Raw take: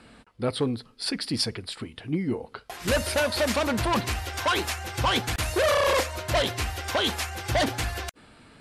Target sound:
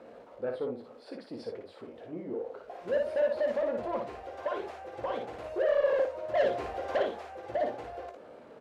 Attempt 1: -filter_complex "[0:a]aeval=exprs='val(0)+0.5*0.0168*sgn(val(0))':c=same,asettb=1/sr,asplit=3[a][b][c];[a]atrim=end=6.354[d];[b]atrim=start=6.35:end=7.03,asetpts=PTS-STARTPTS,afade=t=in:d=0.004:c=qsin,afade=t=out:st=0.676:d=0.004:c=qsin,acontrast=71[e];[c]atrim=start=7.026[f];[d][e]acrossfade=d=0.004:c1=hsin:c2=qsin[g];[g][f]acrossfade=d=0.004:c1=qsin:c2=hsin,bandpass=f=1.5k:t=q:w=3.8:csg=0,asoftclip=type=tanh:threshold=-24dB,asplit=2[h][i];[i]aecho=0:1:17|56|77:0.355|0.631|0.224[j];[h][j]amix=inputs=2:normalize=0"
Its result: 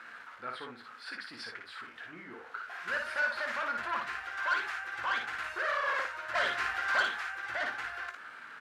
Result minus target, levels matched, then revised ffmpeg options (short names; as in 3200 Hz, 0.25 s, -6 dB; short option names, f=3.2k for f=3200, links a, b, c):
2000 Hz band +14.0 dB
-filter_complex "[0:a]aeval=exprs='val(0)+0.5*0.0168*sgn(val(0))':c=same,asettb=1/sr,asplit=3[a][b][c];[a]atrim=end=6.354[d];[b]atrim=start=6.35:end=7.03,asetpts=PTS-STARTPTS,afade=t=in:d=0.004:c=qsin,afade=t=out:st=0.676:d=0.004:c=qsin,acontrast=71[e];[c]atrim=start=7.026[f];[d][e]acrossfade=d=0.004:c1=hsin:c2=qsin[g];[g][f]acrossfade=d=0.004:c1=qsin:c2=hsin,bandpass=f=540:t=q:w=3.8:csg=0,asoftclip=type=tanh:threshold=-24dB,asplit=2[h][i];[i]aecho=0:1:17|56|77:0.355|0.631|0.224[j];[h][j]amix=inputs=2:normalize=0"